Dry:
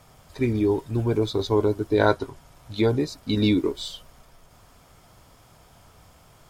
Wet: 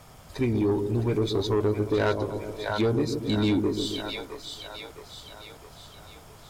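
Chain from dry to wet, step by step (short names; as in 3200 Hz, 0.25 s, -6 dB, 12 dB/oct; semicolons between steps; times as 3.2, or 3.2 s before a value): split-band echo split 570 Hz, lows 0.135 s, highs 0.661 s, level -8 dB; in parallel at +1.5 dB: compressor, threshold -29 dBFS, peak gain reduction 15 dB; on the sum: soft clip -13.5 dBFS, distortion -15 dB; gain -3.5 dB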